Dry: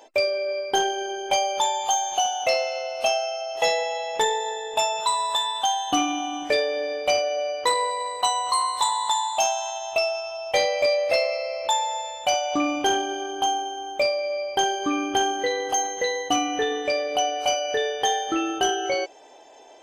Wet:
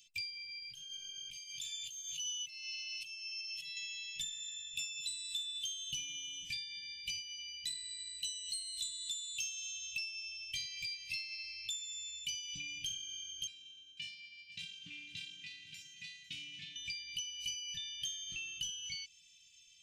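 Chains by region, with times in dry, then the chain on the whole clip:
0.62–3.77 s: tone controls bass -4 dB, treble -2 dB + comb 7.5 ms, depth 70% + compressor with a negative ratio -28 dBFS
13.47–16.76 s: self-modulated delay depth 0.13 ms + band-pass 160–2100 Hz + delay 500 ms -15.5 dB
whole clip: Chebyshev band-stop 170–2600 Hz, order 4; compression 2.5:1, threshold -37 dBFS; trim -4 dB

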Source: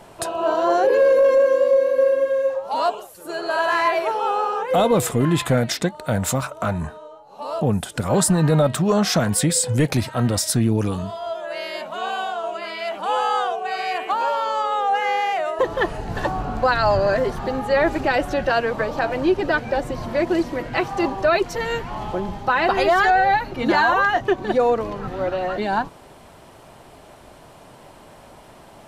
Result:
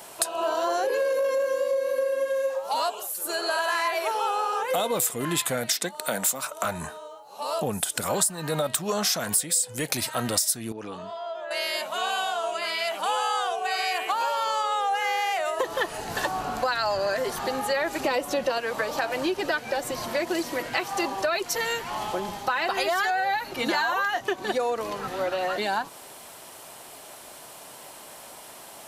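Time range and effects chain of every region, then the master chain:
5.71–6.65 s: high-pass 160 Hz 24 dB/octave + tape noise reduction on one side only encoder only
10.72–11.51 s: high-pass 280 Hz 6 dB/octave + compression 2:1, threshold -28 dBFS + tape spacing loss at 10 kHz 27 dB
18.04–18.58 s: peaking EQ 1.6 kHz -9 dB 0.21 oct + small resonant body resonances 240/490/1000 Hz, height 10 dB, ringing for 35 ms + tape noise reduction on one side only encoder only
whole clip: RIAA curve recording; compression 5:1, threshold -23 dBFS

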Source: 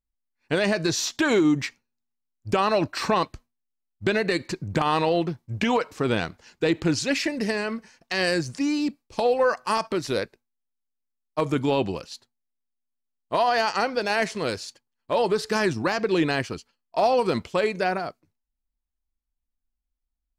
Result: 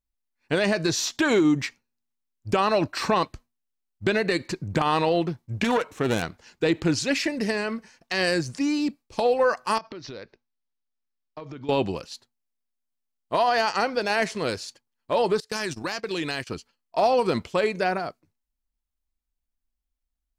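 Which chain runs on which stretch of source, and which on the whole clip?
5.64–6.22 s: self-modulated delay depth 0.15 ms + peaking EQ 4.8 kHz -11 dB 0.25 oct
9.78–11.69 s: steep low-pass 5.9 kHz 48 dB/octave + compression 8:1, threshold -35 dBFS
15.40–16.47 s: gate -29 dBFS, range -26 dB + treble shelf 2.2 kHz +12 dB + compression 2.5:1, threshold -29 dBFS
whole clip: none

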